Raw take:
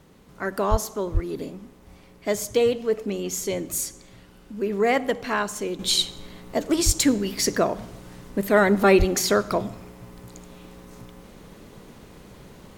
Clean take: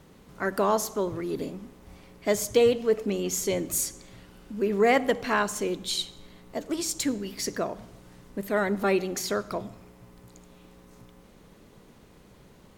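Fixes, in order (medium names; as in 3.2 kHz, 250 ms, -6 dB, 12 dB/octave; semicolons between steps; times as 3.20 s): de-plosive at 0.70/1.13/6.85/8.98 s; gain correction -8 dB, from 5.79 s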